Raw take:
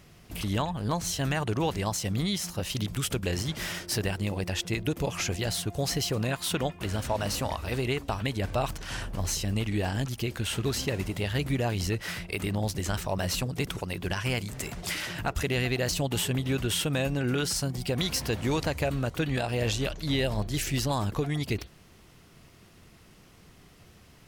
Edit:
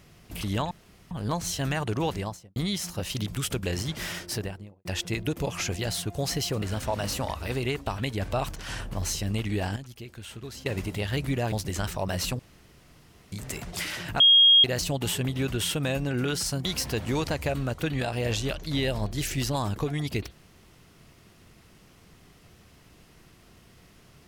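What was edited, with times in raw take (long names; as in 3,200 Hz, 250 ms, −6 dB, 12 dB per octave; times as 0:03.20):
0:00.71: splice in room tone 0.40 s
0:01.70–0:02.16: fade out and dull
0:03.79–0:04.45: fade out and dull
0:06.22–0:06.84: remove
0:09.98–0:10.88: clip gain −11 dB
0:11.74–0:12.62: remove
0:13.49–0:14.42: fill with room tone
0:15.30–0:15.74: beep over 3,260 Hz −13 dBFS
0:17.75–0:18.01: remove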